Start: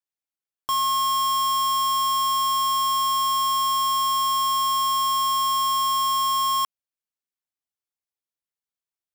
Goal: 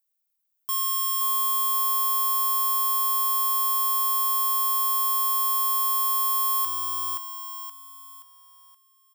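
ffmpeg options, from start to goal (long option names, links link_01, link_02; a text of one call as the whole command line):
ffmpeg -i in.wav -af "aemphasis=mode=production:type=bsi,alimiter=limit=-12.5dB:level=0:latency=1,aecho=1:1:524|1048|1572|2096|2620:0.631|0.246|0.096|0.0374|0.0146,volume=-2dB" out.wav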